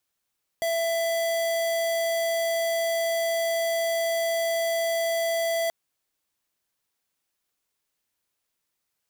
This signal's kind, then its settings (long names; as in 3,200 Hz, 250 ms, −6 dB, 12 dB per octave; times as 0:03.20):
tone square 666 Hz −25.5 dBFS 5.08 s